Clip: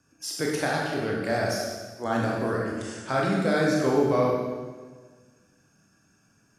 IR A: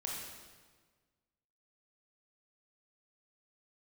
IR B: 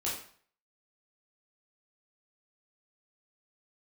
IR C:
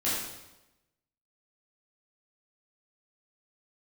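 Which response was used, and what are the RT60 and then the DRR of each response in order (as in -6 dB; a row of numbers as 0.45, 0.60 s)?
A; 1.5, 0.50, 1.0 s; -3.0, -6.5, -10.0 dB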